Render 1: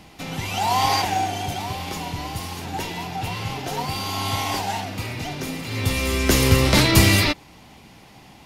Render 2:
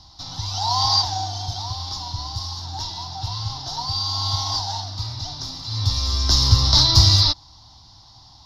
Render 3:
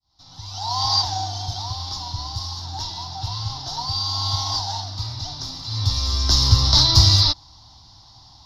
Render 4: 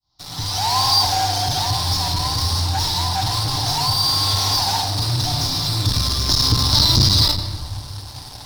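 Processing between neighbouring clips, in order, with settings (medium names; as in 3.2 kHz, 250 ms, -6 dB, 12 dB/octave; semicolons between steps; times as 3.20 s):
FFT filter 110 Hz 0 dB, 180 Hz -18 dB, 320 Hz -15 dB, 450 Hz -26 dB, 660 Hz -11 dB, 990 Hz -3 dB, 2.5 kHz -26 dB, 3.8 kHz +4 dB, 5.4 kHz +8 dB, 8.1 kHz -22 dB; trim +3 dB
fade-in on the opening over 1.09 s
in parallel at -8.5 dB: fuzz box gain 40 dB, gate -47 dBFS; on the sum: reverberation RT60 1.3 s, pre-delay 7 ms, DRR 4 dB; transformer saturation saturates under 250 Hz; trim -1.5 dB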